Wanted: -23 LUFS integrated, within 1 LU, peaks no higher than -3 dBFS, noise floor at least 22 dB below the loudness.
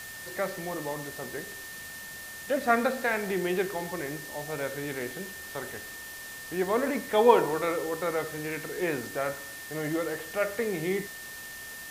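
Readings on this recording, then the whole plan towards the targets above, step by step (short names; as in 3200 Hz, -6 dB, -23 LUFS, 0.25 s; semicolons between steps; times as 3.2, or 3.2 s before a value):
steady tone 1800 Hz; tone level -42 dBFS; noise floor -42 dBFS; noise floor target -53 dBFS; loudness -30.5 LUFS; peak -6.5 dBFS; loudness target -23.0 LUFS
-> notch 1800 Hz, Q 30; denoiser 11 dB, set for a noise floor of -42 dBFS; gain +7.5 dB; limiter -3 dBFS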